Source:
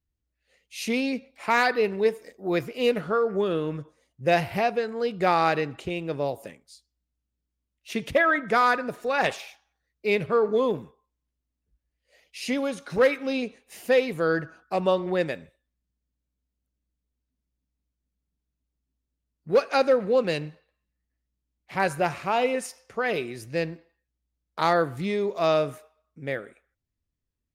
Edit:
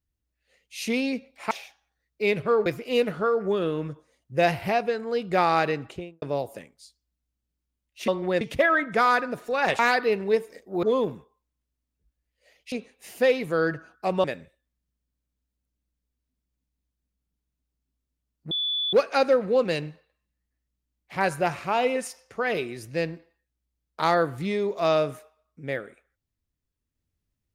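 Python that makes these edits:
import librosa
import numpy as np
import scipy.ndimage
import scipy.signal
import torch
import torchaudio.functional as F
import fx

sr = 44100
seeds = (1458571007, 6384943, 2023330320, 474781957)

y = fx.studio_fade_out(x, sr, start_s=5.73, length_s=0.38)
y = fx.edit(y, sr, fx.swap(start_s=1.51, length_s=1.04, other_s=9.35, other_length_s=1.15),
    fx.cut(start_s=12.39, length_s=1.01),
    fx.move(start_s=14.92, length_s=0.33, to_s=7.97),
    fx.insert_tone(at_s=19.52, length_s=0.42, hz=3460.0, db=-24.0), tone=tone)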